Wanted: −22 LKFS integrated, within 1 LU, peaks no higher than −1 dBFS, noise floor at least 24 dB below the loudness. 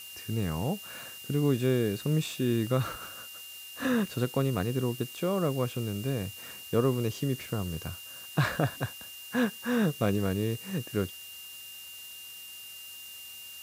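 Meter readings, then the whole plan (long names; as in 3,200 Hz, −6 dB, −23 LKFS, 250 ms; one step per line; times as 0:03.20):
interfering tone 2,800 Hz; level of the tone −45 dBFS; background noise floor −45 dBFS; target noise floor −55 dBFS; integrated loudness −30.5 LKFS; sample peak −12.5 dBFS; target loudness −22.0 LKFS
→ notch filter 2,800 Hz, Q 30
broadband denoise 10 dB, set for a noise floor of −45 dBFS
level +8.5 dB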